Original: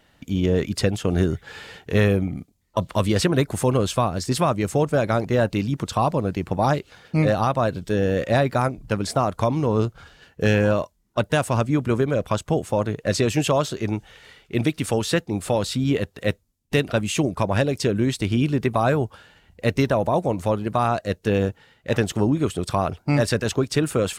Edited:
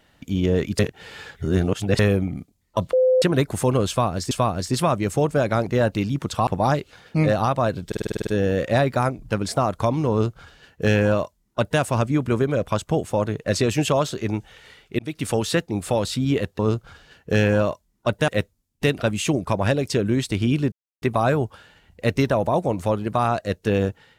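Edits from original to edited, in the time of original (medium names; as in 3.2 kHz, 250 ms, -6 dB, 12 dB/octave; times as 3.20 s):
0.79–1.99 s: reverse
2.93–3.22 s: bleep 513 Hz -13.5 dBFS
3.89–4.31 s: loop, 2 plays
6.05–6.46 s: delete
7.86 s: stutter 0.05 s, 9 plays
9.70–11.39 s: copy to 16.18 s
14.58–14.85 s: fade in
18.62 s: insert silence 0.30 s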